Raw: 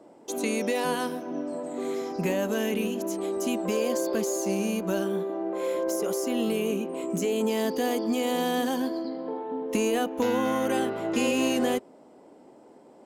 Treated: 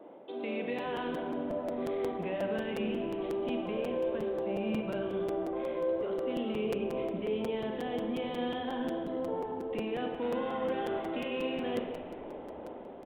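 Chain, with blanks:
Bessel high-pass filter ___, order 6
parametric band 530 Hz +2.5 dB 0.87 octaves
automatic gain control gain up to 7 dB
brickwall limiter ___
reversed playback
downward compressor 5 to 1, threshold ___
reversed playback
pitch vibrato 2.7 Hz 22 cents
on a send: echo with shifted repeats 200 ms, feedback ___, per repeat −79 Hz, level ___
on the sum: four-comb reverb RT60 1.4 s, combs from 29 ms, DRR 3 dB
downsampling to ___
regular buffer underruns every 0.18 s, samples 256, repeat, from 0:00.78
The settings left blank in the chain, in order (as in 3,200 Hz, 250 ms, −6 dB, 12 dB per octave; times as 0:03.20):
170 Hz, −11 dBFS, −35 dBFS, 58%, −17 dB, 8,000 Hz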